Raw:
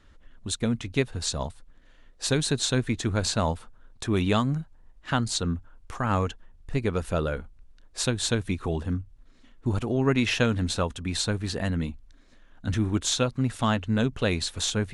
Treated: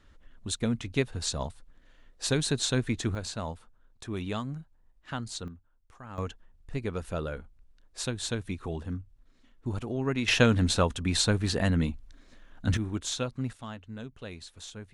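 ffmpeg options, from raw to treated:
ffmpeg -i in.wav -af "asetnsamples=nb_out_samples=441:pad=0,asendcmd='3.15 volume volume -10dB;5.48 volume volume -18.5dB;6.18 volume volume -6.5dB;10.28 volume volume 2dB;12.77 volume volume -7dB;13.53 volume volume -16.5dB',volume=-2.5dB" out.wav

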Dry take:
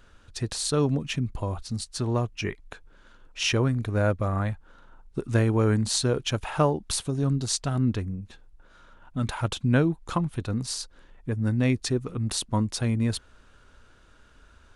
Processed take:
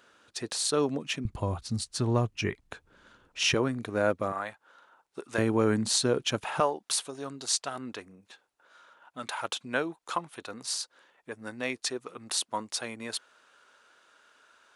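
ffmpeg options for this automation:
ffmpeg -i in.wav -af "asetnsamples=nb_out_samples=441:pad=0,asendcmd='1.25 highpass f 75;3.54 highpass f 250;4.32 highpass f 580;5.38 highpass f 190;6.6 highpass f 570',highpass=310" out.wav

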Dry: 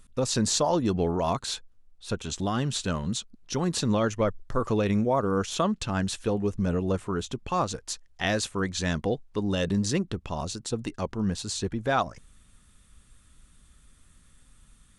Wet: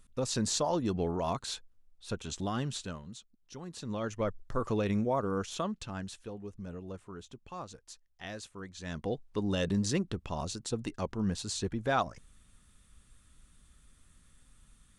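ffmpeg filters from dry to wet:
ffmpeg -i in.wav -af "volume=17.5dB,afade=type=out:start_time=2.61:duration=0.44:silence=0.281838,afade=type=in:start_time=3.76:duration=0.61:silence=0.266073,afade=type=out:start_time=5.1:duration=1.2:silence=0.298538,afade=type=in:start_time=8.8:duration=0.47:silence=0.251189" out.wav

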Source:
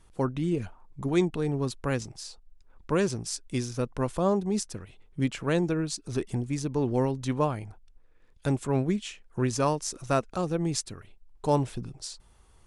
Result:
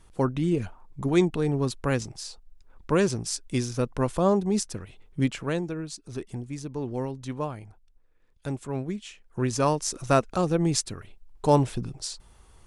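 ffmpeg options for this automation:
ffmpeg -i in.wav -af "volume=12.5dB,afade=type=out:start_time=5.21:duration=0.43:silence=0.398107,afade=type=in:start_time=9.02:duration=0.98:silence=0.334965" out.wav

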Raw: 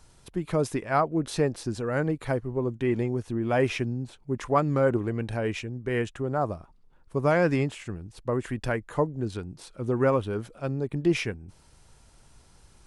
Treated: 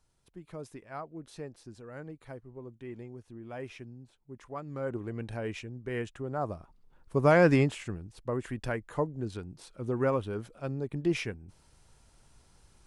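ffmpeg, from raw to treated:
ffmpeg -i in.wav -af "volume=2dB,afade=type=in:start_time=4.64:duration=0.57:silence=0.316228,afade=type=in:start_time=6.32:duration=1.21:silence=0.354813,afade=type=out:start_time=7.53:duration=0.61:silence=0.446684" out.wav

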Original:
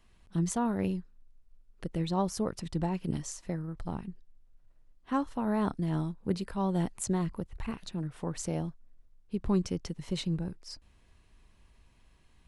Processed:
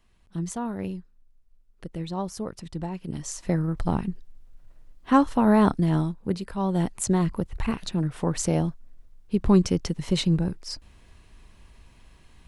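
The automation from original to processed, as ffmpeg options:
ffmpeg -i in.wav -af "volume=19dB,afade=type=in:start_time=3.13:duration=0.47:silence=0.237137,afade=type=out:start_time=5.49:duration=0.91:silence=0.334965,afade=type=in:start_time=6.4:duration=1.19:silence=0.421697" out.wav

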